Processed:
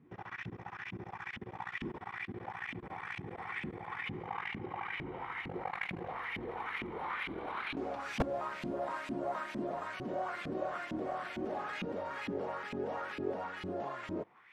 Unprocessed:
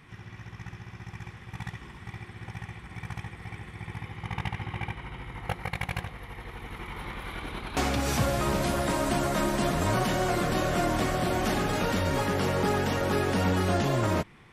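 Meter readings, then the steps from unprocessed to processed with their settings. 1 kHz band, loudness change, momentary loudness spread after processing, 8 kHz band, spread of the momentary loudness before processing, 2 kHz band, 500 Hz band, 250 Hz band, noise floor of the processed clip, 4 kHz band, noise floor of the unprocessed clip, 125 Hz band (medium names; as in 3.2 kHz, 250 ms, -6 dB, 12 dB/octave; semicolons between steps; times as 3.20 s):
-8.0 dB, -11.0 dB, 6 LU, -24.5 dB, 16 LU, -6.0 dB, -9.5 dB, -11.0 dB, -54 dBFS, -13.5 dB, -49 dBFS, -17.5 dB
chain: level held to a coarse grid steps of 23 dB; LFO band-pass saw up 2.2 Hz 230–2800 Hz; wavefolder -37.5 dBFS; trim +16 dB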